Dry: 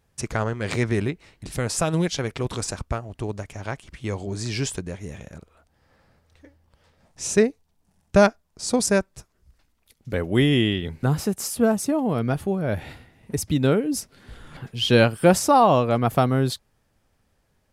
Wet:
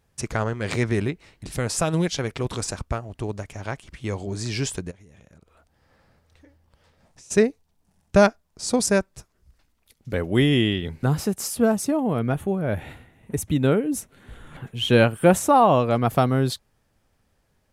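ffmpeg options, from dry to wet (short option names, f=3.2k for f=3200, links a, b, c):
-filter_complex "[0:a]asplit=3[a][b][c];[a]afade=t=out:st=4.9:d=0.02[d];[b]acompressor=threshold=-46dB:ratio=20:attack=3.2:release=140:knee=1:detection=peak,afade=t=in:st=4.9:d=0.02,afade=t=out:st=7.3:d=0.02[e];[c]afade=t=in:st=7.3:d=0.02[f];[d][e][f]amix=inputs=3:normalize=0,asettb=1/sr,asplit=3[g][h][i];[g]atrim=end=11.974[j];[h]atrim=start=11.97:end=15.8,asetpts=PTS-STARTPTS,afade=t=in:d=0.004:c=qsin,afade=t=out:st=3.826:d=0.004:c=qsin,equalizer=f=4.9k:w=3.4:g=-15[k];[i]atrim=start=15.796[l];[j][k]acrossfade=d=0.004:c1=hsin:c2=qsin[m];[m][l]acrossfade=d=0.004:c1=qsin:c2=hsin"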